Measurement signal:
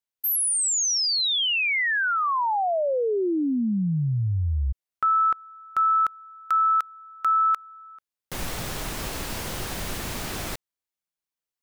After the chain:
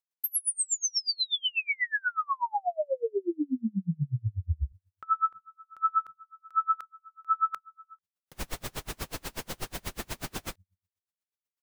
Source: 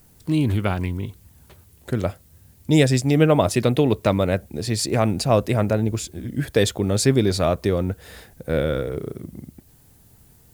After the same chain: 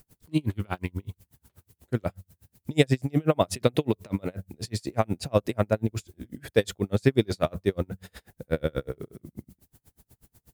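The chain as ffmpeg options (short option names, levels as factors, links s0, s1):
-af "bandreject=f=93.2:t=h:w=4,bandreject=f=186.4:t=h:w=4,aeval=exprs='val(0)*pow(10,-37*(0.5-0.5*cos(2*PI*8.2*n/s))/20)':c=same"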